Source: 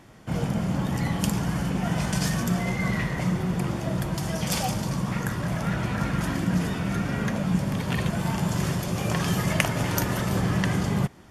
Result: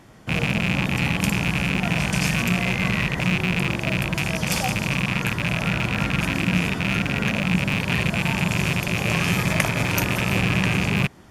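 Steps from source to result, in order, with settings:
loose part that buzzes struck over −28 dBFS, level −14 dBFS
0:09.33–0:09.91: notch filter 2,800 Hz, Q 8.7
level +2 dB

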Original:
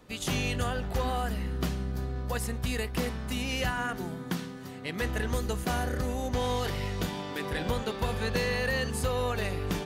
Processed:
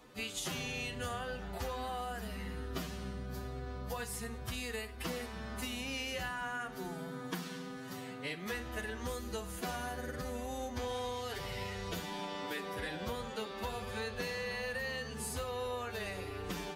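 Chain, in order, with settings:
low-shelf EQ 240 Hz −8 dB
downward compressor, threshold −37 dBFS, peak gain reduction 10 dB
phase-vocoder stretch with locked phases 1.7×
four-comb reverb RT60 0.4 s, combs from 26 ms, DRR 13 dB
level +1 dB

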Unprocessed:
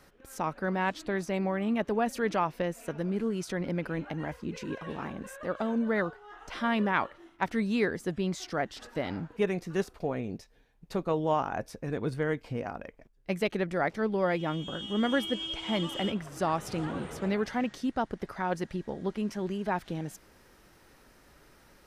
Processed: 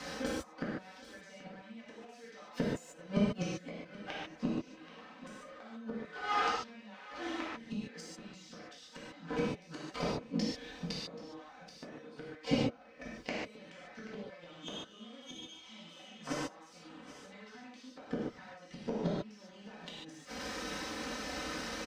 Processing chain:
gain on one half-wave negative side −12 dB
high-pass filter 56 Hz 24 dB per octave
bass and treble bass −4 dB, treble +14 dB
comb filter 3.9 ms, depth 81%
downward compressor 12 to 1, threshold −37 dBFS, peak gain reduction 16 dB
gate with flip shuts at −33 dBFS, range −34 dB
high-frequency loss of the air 170 metres
on a send: single-tap delay 781 ms −20.5 dB
on the sum: reverb whose tail is shaped and stops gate 170 ms flat, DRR −7.5 dB
one half of a high-frequency compander encoder only
level +13.5 dB

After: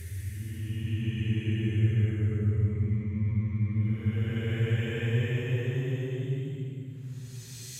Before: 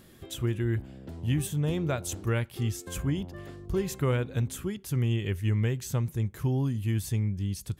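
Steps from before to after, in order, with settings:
rotating-speaker cabinet horn 0.75 Hz, later 5.5 Hz, at 0:04.86
extreme stretch with random phases 18×, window 0.10 s, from 0:05.39

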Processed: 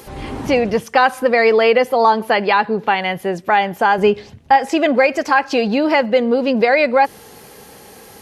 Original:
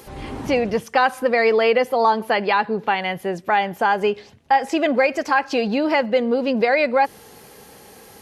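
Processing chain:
0:03.98–0:04.56: low-shelf EQ 230 Hz +10 dB
level +4 dB

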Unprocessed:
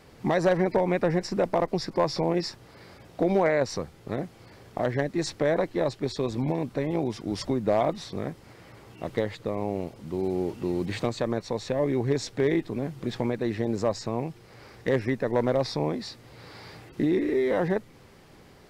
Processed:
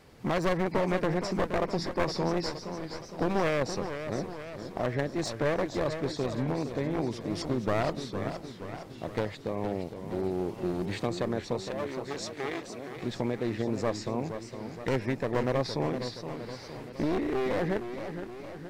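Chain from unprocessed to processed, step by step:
wavefolder on the positive side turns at −24.5 dBFS
0:11.62–0:12.96: high-pass filter 820 Hz 6 dB per octave
feedback echo with a swinging delay time 467 ms, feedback 57%, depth 153 cents, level −9 dB
level −3 dB

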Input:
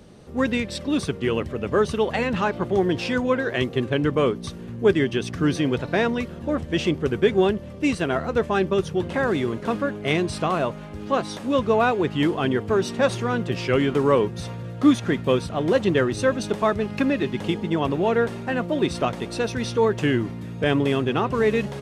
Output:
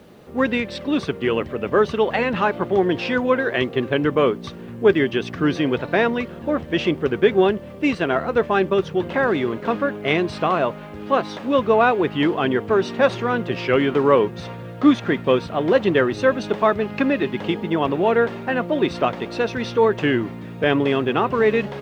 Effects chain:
low-pass filter 3,400 Hz 12 dB per octave
bit reduction 11 bits
low-shelf EQ 150 Hz −12 dB
level +4.5 dB

